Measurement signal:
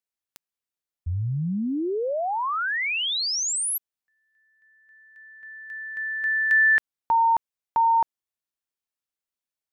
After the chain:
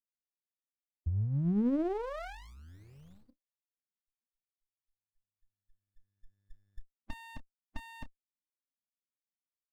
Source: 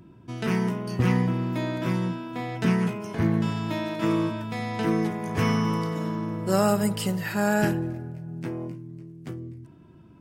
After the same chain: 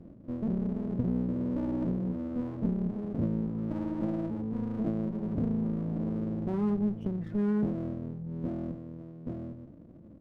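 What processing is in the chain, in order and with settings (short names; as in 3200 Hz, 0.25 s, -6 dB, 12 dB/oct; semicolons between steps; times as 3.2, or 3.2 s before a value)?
switching dead time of 0.087 ms; graphic EQ 125/250/500/1000/2000/4000/8000 Hz -7/+8/-8/-8/-12/-4/-8 dB; compressor 3:1, threshold -29 dBFS; loudest bins only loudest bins 16; air absorption 82 m; doubler 29 ms -13.5 dB; running maximum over 33 samples; gain +1 dB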